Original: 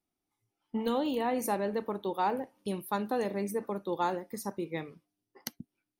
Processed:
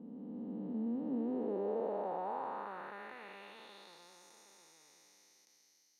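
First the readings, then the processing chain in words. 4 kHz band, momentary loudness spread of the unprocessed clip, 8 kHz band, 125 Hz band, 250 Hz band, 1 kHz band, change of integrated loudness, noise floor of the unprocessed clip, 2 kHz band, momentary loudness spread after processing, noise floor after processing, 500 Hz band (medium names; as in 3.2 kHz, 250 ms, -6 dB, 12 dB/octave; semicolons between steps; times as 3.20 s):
-13.5 dB, 13 LU, -16.5 dB, -11.0 dB, -5.5 dB, -10.0 dB, -6.0 dB, under -85 dBFS, -10.0 dB, 20 LU, -70 dBFS, -7.5 dB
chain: spectral blur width 1410 ms; band-pass sweep 220 Hz -> 6.1 kHz, 0.99–4.24 s; trim +6 dB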